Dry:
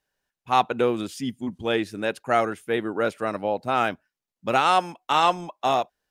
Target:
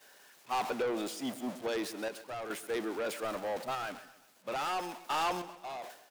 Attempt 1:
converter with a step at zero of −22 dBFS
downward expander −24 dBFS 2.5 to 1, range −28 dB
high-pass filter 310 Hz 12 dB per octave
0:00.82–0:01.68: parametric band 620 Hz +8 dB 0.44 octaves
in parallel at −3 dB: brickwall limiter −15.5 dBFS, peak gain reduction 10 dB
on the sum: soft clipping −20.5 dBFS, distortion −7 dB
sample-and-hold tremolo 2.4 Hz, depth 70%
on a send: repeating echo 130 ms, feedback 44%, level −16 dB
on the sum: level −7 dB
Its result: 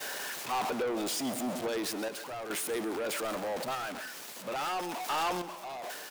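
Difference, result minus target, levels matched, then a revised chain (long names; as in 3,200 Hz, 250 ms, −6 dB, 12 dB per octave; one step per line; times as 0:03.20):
converter with a step at zero: distortion +7 dB
converter with a step at zero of −30.5 dBFS
downward expander −24 dBFS 2.5 to 1, range −28 dB
high-pass filter 310 Hz 12 dB per octave
0:00.82–0:01.68: parametric band 620 Hz +8 dB 0.44 octaves
in parallel at −3 dB: brickwall limiter −15.5 dBFS, peak gain reduction 9.5 dB
on the sum: soft clipping −20.5 dBFS, distortion −7 dB
sample-and-hold tremolo 2.4 Hz, depth 70%
on a send: repeating echo 130 ms, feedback 44%, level −16 dB
on the sum: level −7 dB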